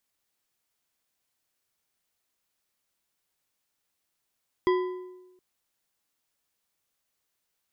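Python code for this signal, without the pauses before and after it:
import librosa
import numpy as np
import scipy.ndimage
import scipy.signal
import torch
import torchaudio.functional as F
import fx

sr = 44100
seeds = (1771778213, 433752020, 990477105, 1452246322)

y = fx.strike_metal(sr, length_s=0.72, level_db=-18.5, body='bar', hz=366.0, decay_s=1.07, tilt_db=7, modes=5)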